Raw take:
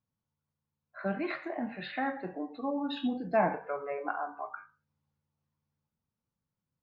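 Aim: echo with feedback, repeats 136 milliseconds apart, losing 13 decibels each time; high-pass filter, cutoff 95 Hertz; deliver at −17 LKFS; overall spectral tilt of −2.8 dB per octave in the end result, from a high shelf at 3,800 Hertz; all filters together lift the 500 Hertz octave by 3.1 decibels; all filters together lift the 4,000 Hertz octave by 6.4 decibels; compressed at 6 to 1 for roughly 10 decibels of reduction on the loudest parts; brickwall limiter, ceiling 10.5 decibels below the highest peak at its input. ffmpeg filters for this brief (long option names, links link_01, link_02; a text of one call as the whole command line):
ffmpeg -i in.wav -af "highpass=95,equalizer=frequency=500:width_type=o:gain=4,highshelf=frequency=3800:gain=7.5,equalizer=frequency=4000:width_type=o:gain=3,acompressor=threshold=-30dB:ratio=6,alimiter=level_in=6dB:limit=-24dB:level=0:latency=1,volume=-6dB,aecho=1:1:136|272|408:0.224|0.0493|0.0108,volume=22.5dB" out.wav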